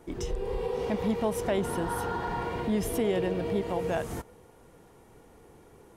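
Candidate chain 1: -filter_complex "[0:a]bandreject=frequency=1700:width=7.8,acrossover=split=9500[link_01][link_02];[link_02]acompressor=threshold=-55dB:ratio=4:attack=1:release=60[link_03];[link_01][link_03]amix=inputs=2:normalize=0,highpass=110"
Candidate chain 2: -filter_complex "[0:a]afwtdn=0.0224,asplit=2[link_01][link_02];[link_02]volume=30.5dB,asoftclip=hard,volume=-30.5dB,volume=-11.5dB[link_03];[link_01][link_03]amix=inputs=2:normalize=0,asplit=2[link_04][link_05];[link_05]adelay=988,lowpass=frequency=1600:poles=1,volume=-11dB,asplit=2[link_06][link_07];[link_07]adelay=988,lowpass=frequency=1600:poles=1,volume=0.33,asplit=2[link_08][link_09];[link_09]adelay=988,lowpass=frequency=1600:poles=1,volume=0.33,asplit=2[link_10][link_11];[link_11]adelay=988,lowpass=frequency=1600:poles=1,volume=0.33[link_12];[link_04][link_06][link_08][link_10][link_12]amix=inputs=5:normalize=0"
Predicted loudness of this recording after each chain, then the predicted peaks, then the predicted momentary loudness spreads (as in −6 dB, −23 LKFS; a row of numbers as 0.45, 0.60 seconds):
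−30.5, −30.0 LKFS; −15.0, −15.5 dBFS; 6, 14 LU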